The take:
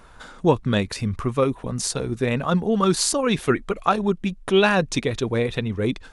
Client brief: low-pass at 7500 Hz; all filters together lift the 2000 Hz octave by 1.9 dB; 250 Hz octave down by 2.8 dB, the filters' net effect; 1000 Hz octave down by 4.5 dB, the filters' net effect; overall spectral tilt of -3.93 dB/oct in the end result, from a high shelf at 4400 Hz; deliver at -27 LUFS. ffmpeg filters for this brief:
-af "lowpass=7.5k,equalizer=f=250:t=o:g=-3.5,equalizer=f=1k:t=o:g=-8,equalizer=f=2k:t=o:g=4,highshelf=f=4.4k:g=6.5,volume=-3.5dB"

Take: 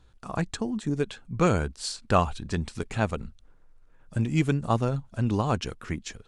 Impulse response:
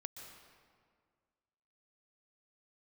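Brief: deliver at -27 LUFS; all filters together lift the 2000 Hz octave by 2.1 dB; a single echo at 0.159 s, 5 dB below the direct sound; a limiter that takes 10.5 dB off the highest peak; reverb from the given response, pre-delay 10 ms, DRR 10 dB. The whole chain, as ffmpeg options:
-filter_complex "[0:a]equalizer=f=2k:t=o:g=3,alimiter=limit=-17dB:level=0:latency=1,aecho=1:1:159:0.562,asplit=2[a][b];[1:a]atrim=start_sample=2205,adelay=10[c];[b][c]afir=irnorm=-1:irlink=0,volume=-6.5dB[d];[a][d]amix=inputs=2:normalize=0,volume=2.5dB"

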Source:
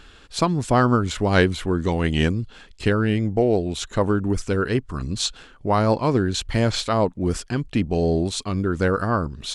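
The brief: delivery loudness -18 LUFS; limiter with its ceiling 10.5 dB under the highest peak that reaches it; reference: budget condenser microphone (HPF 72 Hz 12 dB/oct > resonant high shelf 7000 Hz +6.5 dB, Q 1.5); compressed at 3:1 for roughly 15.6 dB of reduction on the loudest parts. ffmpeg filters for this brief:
-af "acompressor=threshold=-35dB:ratio=3,alimiter=level_in=5dB:limit=-24dB:level=0:latency=1,volume=-5dB,highpass=72,highshelf=f=7k:t=q:w=1.5:g=6.5,volume=21dB"

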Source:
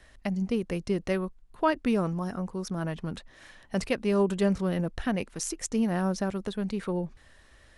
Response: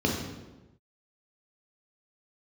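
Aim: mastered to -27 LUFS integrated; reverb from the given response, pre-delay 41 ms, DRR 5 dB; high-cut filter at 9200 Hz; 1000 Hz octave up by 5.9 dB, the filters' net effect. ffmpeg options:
-filter_complex "[0:a]lowpass=9.2k,equalizer=f=1k:t=o:g=7,asplit=2[a][b];[1:a]atrim=start_sample=2205,adelay=41[c];[b][c]afir=irnorm=-1:irlink=0,volume=-17dB[d];[a][d]amix=inputs=2:normalize=0,volume=-3.5dB"

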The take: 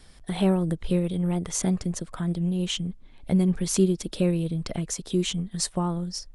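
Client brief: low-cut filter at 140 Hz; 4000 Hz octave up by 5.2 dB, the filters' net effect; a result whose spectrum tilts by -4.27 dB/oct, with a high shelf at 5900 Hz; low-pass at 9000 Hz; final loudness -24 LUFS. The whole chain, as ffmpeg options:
-af "highpass=140,lowpass=9k,equalizer=f=4k:t=o:g=4,highshelf=f=5.9k:g=8.5,volume=2dB"

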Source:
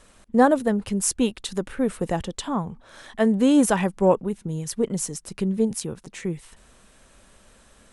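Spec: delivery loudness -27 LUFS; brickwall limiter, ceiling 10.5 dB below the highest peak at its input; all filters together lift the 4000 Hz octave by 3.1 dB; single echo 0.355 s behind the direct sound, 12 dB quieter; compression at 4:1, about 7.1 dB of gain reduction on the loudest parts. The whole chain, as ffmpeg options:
-af "equalizer=f=4k:t=o:g=4,acompressor=threshold=-21dB:ratio=4,alimiter=limit=-20.5dB:level=0:latency=1,aecho=1:1:355:0.251,volume=4dB"

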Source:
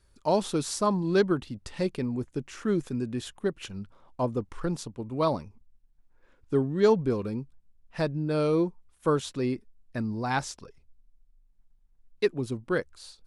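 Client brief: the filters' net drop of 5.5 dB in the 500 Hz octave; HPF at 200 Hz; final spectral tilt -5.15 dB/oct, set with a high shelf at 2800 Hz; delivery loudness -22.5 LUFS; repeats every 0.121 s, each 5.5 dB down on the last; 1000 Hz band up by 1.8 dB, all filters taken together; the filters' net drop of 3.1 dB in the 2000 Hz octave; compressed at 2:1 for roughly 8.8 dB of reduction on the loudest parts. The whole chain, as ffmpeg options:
-af "highpass=200,equalizer=f=500:t=o:g=-8,equalizer=f=1k:t=o:g=6,equalizer=f=2k:t=o:g=-5.5,highshelf=f=2.8k:g=-3,acompressor=threshold=-37dB:ratio=2,aecho=1:1:121|242|363|484|605|726|847:0.531|0.281|0.149|0.079|0.0419|0.0222|0.0118,volume=15.5dB"

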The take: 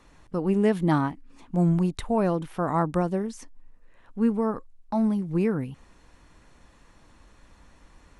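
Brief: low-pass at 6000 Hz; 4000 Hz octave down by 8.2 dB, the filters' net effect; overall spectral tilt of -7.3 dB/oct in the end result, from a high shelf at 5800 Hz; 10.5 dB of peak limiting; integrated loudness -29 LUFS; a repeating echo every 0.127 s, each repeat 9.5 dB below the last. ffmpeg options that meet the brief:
-af "lowpass=6k,equalizer=f=4k:t=o:g=-8,highshelf=f=5.8k:g=-6.5,alimiter=limit=-21.5dB:level=0:latency=1,aecho=1:1:127|254|381|508:0.335|0.111|0.0365|0.012,volume=1.5dB"

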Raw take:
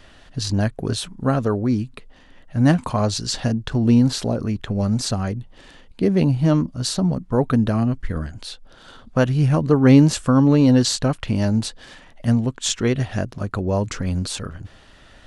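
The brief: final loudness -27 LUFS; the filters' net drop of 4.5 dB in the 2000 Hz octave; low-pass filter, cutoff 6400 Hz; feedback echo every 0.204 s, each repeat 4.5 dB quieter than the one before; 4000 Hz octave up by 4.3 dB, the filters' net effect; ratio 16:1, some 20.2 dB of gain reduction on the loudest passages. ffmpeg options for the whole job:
-af "lowpass=6.4k,equalizer=f=2k:t=o:g=-8,equalizer=f=4k:t=o:g=7.5,acompressor=threshold=-27dB:ratio=16,aecho=1:1:204|408|612|816|1020|1224|1428|1632|1836:0.596|0.357|0.214|0.129|0.0772|0.0463|0.0278|0.0167|0.01,volume=4dB"

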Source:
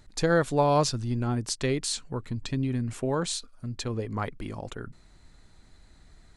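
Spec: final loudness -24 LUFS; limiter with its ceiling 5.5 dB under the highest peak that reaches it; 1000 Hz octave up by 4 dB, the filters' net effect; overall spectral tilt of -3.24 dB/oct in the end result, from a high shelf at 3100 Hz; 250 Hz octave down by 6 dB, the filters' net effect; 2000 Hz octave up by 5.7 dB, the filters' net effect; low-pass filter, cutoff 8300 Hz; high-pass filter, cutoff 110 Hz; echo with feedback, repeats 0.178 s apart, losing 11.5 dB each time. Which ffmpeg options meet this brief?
-af "highpass=110,lowpass=8.3k,equalizer=f=250:t=o:g=-8,equalizer=f=1k:t=o:g=4,equalizer=f=2k:t=o:g=4.5,highshelf=f=3.1k:g=5.5,alimiter=limit=-15dB:level=0:latency=1,aecho=1:1:178|356|534:0.266|0.0718|0.0194,volume=5.5dB"

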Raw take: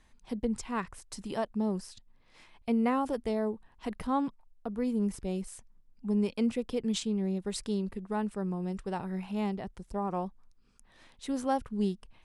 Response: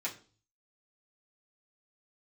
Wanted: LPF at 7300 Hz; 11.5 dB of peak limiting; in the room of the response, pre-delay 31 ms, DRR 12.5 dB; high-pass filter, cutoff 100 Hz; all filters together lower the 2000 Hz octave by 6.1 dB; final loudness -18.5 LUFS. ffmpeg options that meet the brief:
-filter_complex "[0:a]highpass=100,lowpass=7.3k,equalizer=f=2k:t=o:g=-8,alimiter=level_in=5.5dB:limit=-24dB:level=0:latency=1,volume=-5.5dB,asplit=2[a][b];[1:a]atrim=start_sample=2205,adelay=31[c];[b][c]afir=irnorm=-1:irlink=0,volume=-15dB[d];[a][d]amix=inputs=2:normalize=0,volume=20.5dB"

